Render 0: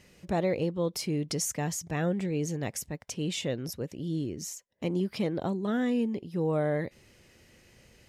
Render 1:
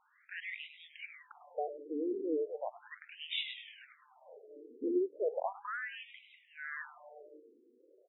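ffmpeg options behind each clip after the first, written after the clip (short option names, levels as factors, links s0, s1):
-filter_complex "[0:a]bandreject=f=60:t=h:w=6,bandreject=f=120:t=h:w=6,bandreject=f=180:t=h:w=6,bandreject=f=240:t=h:w=6,bandreject=f=300:t=h:w=6,asplit=9[s0][s1][s2][s3][s4][s5][s6][s7][s8];[s1]adelay=101,afreqshift=-150,volume=0.299[s9];[s2]adelay=202,afreqshift=-300,volume=0.195[s10];[s3]adelay=303,afreqshift=-450,volume=0.126[s11];[s4]adelay=404,afreqshift=-600,volume=0.0822[s12];[s5]adelay=505,afreqshift=-750,volume=0.0531[s13];[s6]adelay=606,afreqshift=-900,volume=0.0347[s14];[s7]adelay=707,afreqshift=-1050,volume=0.0224[s15];[s8]adelay=808,afreqshift=-1200,volume=0.0146[s16];[s0][s9][s10][s11][s12][s13][s14][s15][s16]amix=inputs=9:normalize=0,afftfilt=real='re*between(b*sr/1024,340*pow(2800/340,0.5+0.5*sin(2*PI*0.36*pts/sr))/1.41,340*pow(2800/340,0.5+0.5*sin(2*PI*0.36*pts/sr))*1.41)':imag='im*between(b*sr/1024,340*pow(2800/340,0.5+0.5*sin(2*PI*0.36*pts/sr))/1.41,340*pow(2800/340,0.5+0.5*sin(2*PI*0.36*pts/sr))*1.41)':win_size=1024:overlap=0.75,volume=1.12"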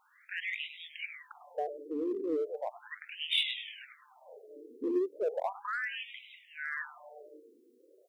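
-filter_complex "[0:a]asplit=2[s0][s1];[s1]asoftclip=type=hard:threshold=0.0188,volume=0.266[s2];[s0][s2]amix=inputs=2:normalize=0,highshelf=f=2700:g=10.5"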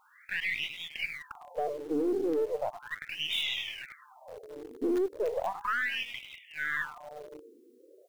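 -filter_complex "[0:a]asplit=2[s0][s1];[s1]acrusher=bits=5:dc=4:mix=0:aa=0.000001,volume=0.335[s2];[s0][s2]amix=inputs=2:normalize=0,alimiter=level_in=1.5:limit=0.0631:level=0:latency=1:release=12,volume=0.668,volume=1.78"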